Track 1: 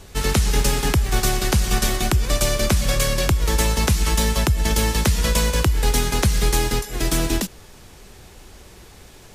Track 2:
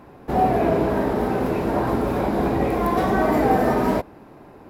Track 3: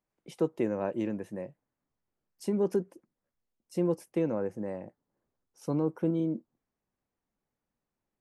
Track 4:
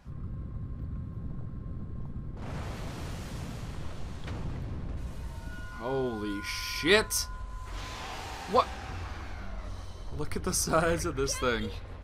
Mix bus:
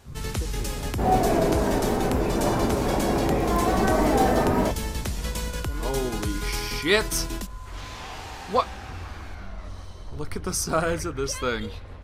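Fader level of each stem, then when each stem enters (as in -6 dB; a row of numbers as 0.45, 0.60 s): -11.5, -2.5, -12.0, +2.0 dB; 0.00, 0.70, 0.00, 0.00 s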